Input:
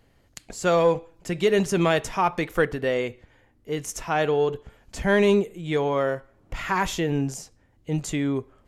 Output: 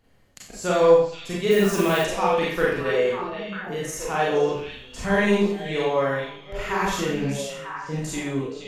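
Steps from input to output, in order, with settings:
echo through a band-pass that steps 473 ms, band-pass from 3,400 Hz, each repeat −1.4 octaves, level −3.5 dB
four-comb reverb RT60 0.54 s, combs from 30 ms, DRR −5.5 dB
0:01.50–0:02.03: background noise blue −34 dBFS
level −5.5 dB

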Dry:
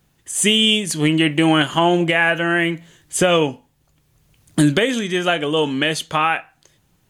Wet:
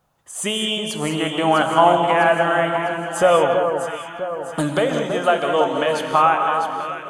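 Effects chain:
flat-topped bell 840 Hz +12.5 dB
on a send: delay that swaps between a low-pass and a high-pass 326 ms, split 1,300 Hz, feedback 70%, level −5.5 dB
on the sum: reverb whose tail is shaped and stops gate 230 ms rising, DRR 6 dB
level −8.5 dB

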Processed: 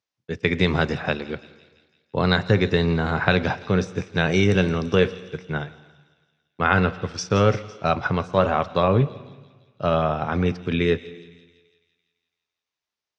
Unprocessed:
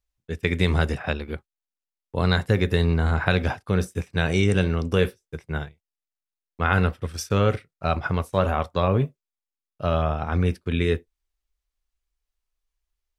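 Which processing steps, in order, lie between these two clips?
elliptic band-pass filter 110–5,900 Hz, stop band 40 dB
delay with a high-pass on its return 168 ms, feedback 60%, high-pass 4,000 Hz, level −12 dB
on a send at −18.5 dB: convolution reverb RT60 1.3 s, pre-delay 109 ms
on the sum: level +3.5 dB

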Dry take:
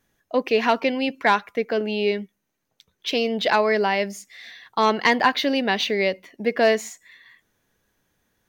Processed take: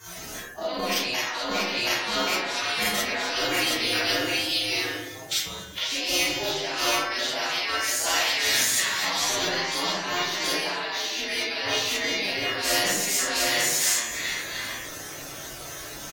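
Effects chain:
harmonic-percussive split with one part muted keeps percussive
high-pass filter 54 Hz 6 dB per octave
parametric band 6,000 Hz +7.5 dB 1.4 octaves
hum removal 356.8 Hz, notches 21
brickwall limiter −17.5 dBFS, peak gain reduction 11 dB
delay with a band-pass on its return 74 ms, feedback 46%, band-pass 490 Hz, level −21 dB
phase-vocoder stretch with locked phases 1.9×
single-tap delay 725 ms −5 dB
compressor whose output falls as the input rises −43 dBFS, ratio −1
convolution reverb RT60 0.55 s, pre-delay 4 ms, DRR −9.5 dB
every bin compressed towards the loudest bin 2 to 1
level +2.5 dB

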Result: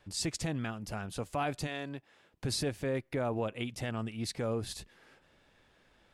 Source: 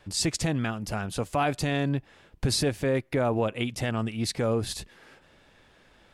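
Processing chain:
0:01.66–0:02.44: high-pass filter 690 Hz → 180 Hz 6 dB per octave
level −7.5 dB

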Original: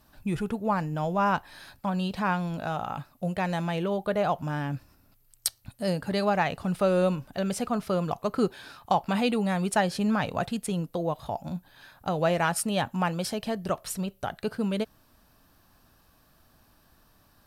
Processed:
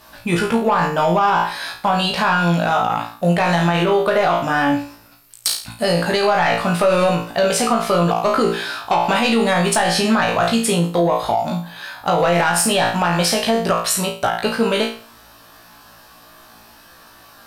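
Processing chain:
mid-hump overdrive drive 16 dB, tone 6,700 Hz, clips at −7.5 dBFS
flutter between parallel walls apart 3 metres, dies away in 0.4 s
brickwall limiter −14.5 dBFS, peak gain reduction 10.5 dB
level +6.5 dB

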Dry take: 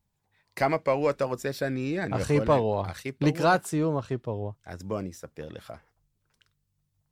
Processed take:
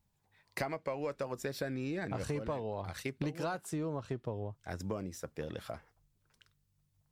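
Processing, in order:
downward compressor 12 to 1, threshold −33 dBFS, peak gain reduction 17 dB

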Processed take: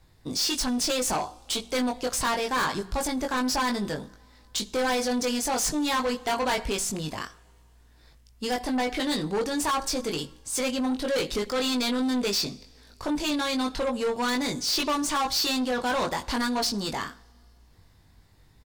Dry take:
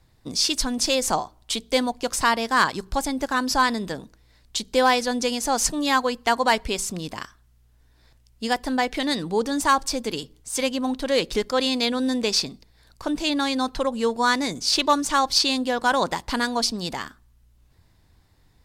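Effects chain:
double-tracking delay 20 ms −4 dB
coupled-rooms reverb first 0.6 s, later 3.1 s, from −18 dB, DRR 19.5 dB
soft clipping −22.5 dBFS, distortion −8 dB

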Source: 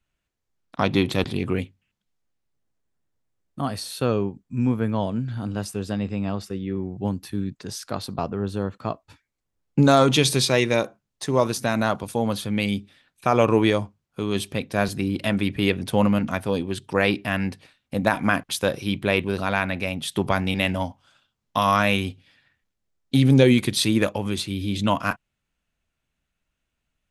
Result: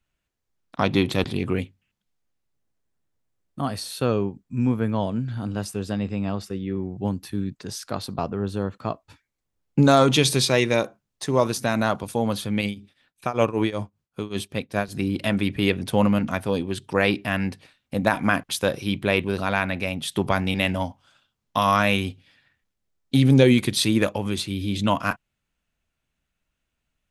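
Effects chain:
0:12.61–0:14.95: shaped tremolo triangle 5.2 Hz, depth 90%

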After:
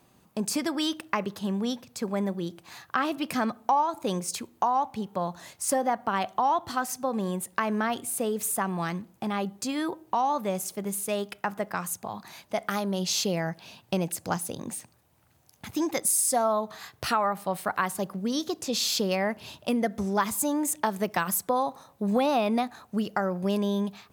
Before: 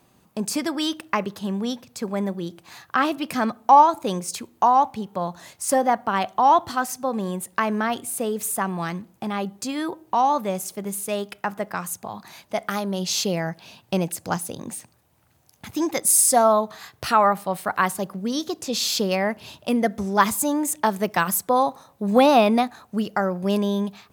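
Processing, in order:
downward compressor 3 to 1, threshold −21 dBFS, peak gain reduction 10 dB
level −2 dB

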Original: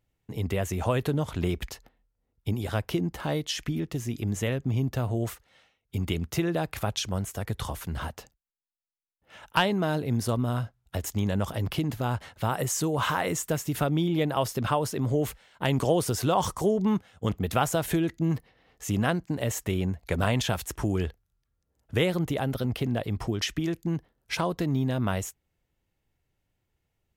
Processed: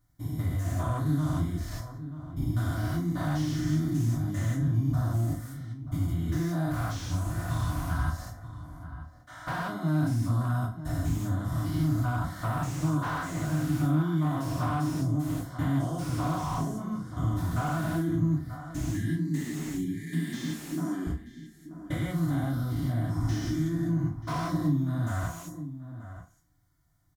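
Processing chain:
spectrum averaged block by block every 200 ms
0:19.04–0:21.07: elliptic high-pass filter 160 Hz
0:18.39–0:20.77: gain on a spectral selection 460–1,600 Hz −29 dB
downward compressor 5 to 1, threshold −35 dBFS, peak gain reduction 11.5 dB
Butterworth band-reject 870 Hz, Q 5.6
phaser with its sweep stopped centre 1,100 Hz, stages 4
slap from a distant wall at 160 metres, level −12 dB
feedback delay network reverb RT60 0.37 s, low-frequency decay 0.95×, high-frequency decay 0.9×, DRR −6 dB
slew-rate limiting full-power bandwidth 20 Hz
level +5 dB

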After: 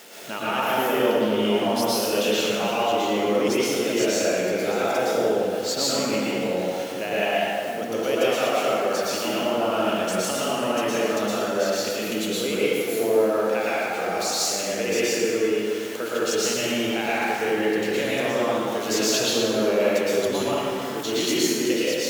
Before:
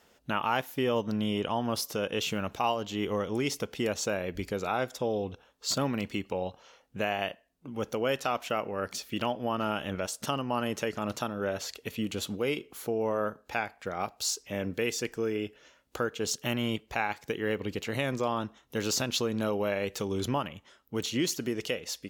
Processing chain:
converter with a step at zero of −39.5 dBFS
high-pass filter 280 Hz 12 dB per octave
parametric band 1,100 Hz −6.5 dB 0.85 octaves
dense smooth reverb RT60 2.7 s, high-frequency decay 0.5×, pre-delay 100 ms, DRR −9 dB

